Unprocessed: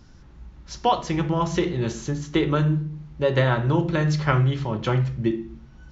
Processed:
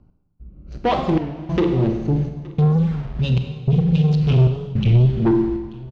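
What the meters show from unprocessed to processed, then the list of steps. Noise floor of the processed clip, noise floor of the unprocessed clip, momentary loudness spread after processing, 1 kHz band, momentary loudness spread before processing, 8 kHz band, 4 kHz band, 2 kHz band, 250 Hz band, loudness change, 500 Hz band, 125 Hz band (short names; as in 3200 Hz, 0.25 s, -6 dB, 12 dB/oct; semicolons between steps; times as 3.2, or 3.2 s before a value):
-55 dBFS, -48 dBFS, 8 LU, -2.0 dB, 7 LU, n/a, -1.5 dB, -6.5 dB, +5.5 dB, +4.5 dB, +1.0 dB, +6.5 dB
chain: Wiener smoothing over 25 samples; spectral gain 2.24–5.06, 260–2400 Hz -28 dB; high shelf 6100 Hz +10 dB; AGC gain up to 15 dB; in parallel at -7 dB: bit-crush 5-bit; on the sum: rotary speaker horn 0.6 Hz; soft clip -12.5 dBFS, distortion -8 dB; step gate "x...xxxxxxx" 151 bpm -60 dB; air absorption 200 m; echo 0.871 s -22.5 dB; Schroeder reverb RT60 1.3 s, combs from 32 ms, DRR 5.5 dB; record warp 33 1/3 rpm, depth 160 cents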